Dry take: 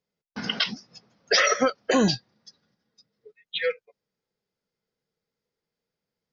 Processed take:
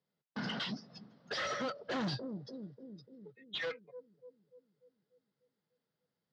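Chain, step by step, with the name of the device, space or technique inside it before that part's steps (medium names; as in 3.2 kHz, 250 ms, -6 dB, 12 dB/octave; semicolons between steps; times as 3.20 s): analogue delay pedal into a guitar amplifier (bucket-brigade echo 294 ms, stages 1024, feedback 59%, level -19 dB; valve stage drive 33 dB, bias 0.3; cabinet simulation 110–4500 Hz, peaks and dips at 140 Hz +5 dB, 440 Hz -4 dB, 2.4 kHz -8 dB)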